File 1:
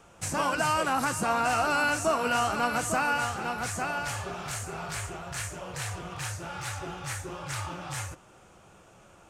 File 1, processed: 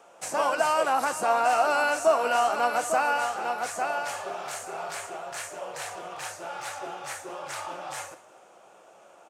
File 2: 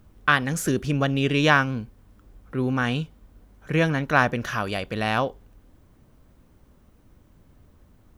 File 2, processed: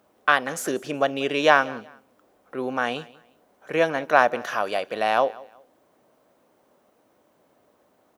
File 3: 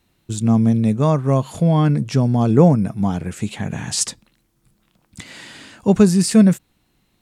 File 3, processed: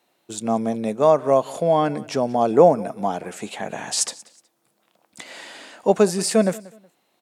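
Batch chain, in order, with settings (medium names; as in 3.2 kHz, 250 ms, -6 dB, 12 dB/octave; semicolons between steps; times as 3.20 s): high-pass 350 Hz 12 dB/octave; peaking EQ 650 Hz +8.5 dB 1.1 oct; on a send: feedback delay 184 ms, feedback 28%, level -21.5 dB; on the sum: trim -1.5 dB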